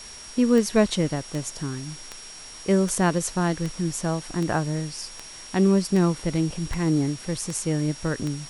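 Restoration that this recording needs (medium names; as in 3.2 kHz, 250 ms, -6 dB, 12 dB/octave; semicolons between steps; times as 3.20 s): de-click; band-stop 5.6 kHz, Q 30; noise reduction 26 dB, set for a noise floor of -41 dBFS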